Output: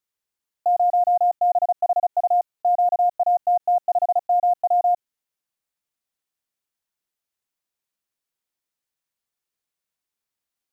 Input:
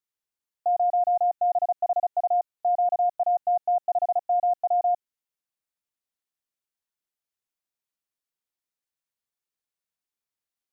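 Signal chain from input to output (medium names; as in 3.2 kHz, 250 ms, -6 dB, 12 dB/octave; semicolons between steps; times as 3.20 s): block-companded coder 7-bit; trim +4 dB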